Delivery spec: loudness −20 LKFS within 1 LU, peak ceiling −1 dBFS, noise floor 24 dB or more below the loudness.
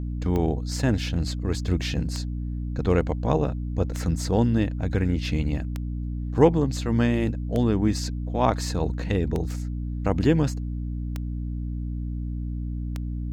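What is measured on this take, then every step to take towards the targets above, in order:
number of clicks 8; mains hum 60 Hz; hum harmonics up to 300 Hz; level of the hum −27 dBFS; integrated loudness −26.0 LKFS; sample peak −3.5 dBFS; target loudness −20.0 LKFS
→ click removal
hum removal 60 Hz, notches 5
level +6 dB
brickwall limiter −1 dBFS

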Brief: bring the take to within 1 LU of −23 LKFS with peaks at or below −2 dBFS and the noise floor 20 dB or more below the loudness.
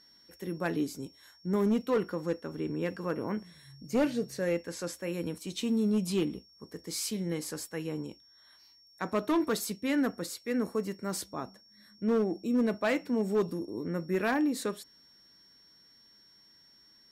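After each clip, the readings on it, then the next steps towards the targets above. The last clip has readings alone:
share of clipped samples 0.9%; peaks flattened at −21.5 dBFS; interfering tone 5,500 Hz; level of the tone −58 dBFS; integrated loudness −32.0 LKFS; sample peak −21.5 dBFS; target loudness −23.0 LKFS
→ clipped peaks rebuilt −21.5 dBFS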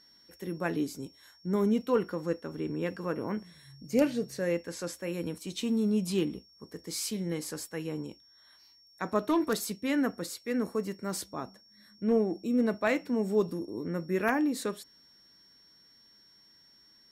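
share of clipped samples 0.0%; interfering tone 5,500 Hz; level of the tone −58 dBFS
→ notch filter 5,500 Hz, Q 30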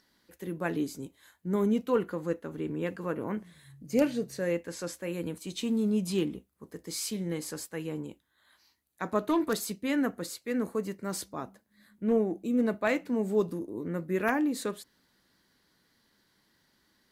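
interfering tone none found; integrated loudness −31.5 LKFS; sample peak −13.5 dBFS; target loudness −23.0 LKFS
→ level +8.5 dB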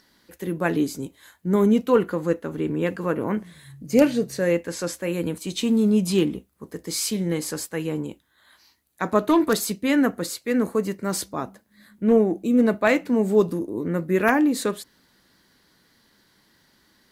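integrated loudness −23.0 LKFS; sample peak −5.0 dBFS; background noise floor −62 dBFS

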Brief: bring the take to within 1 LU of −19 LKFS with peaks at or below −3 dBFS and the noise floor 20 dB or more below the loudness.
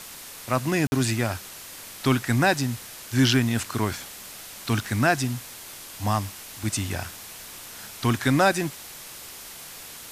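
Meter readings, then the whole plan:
number of dropouts 1; longest dropout 51 ms; background noise floor −42 dBFS; target noise floor −45 dBFS; integrated loudness −25.0 LKFS; sample peak −7.5 dBFS; target loudness −19.0 LKFS
→ repair the gap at 0:00.87, 51 ms
noise reduction from a noise print 6 dB
level +6 dB
brickwall limiter −3 dBFS

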